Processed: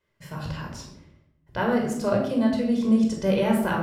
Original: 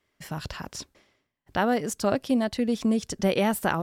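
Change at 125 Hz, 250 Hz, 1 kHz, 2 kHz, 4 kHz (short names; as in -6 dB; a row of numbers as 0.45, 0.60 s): +3.5, +4.0, -1.0, -0.5, -3.0 dB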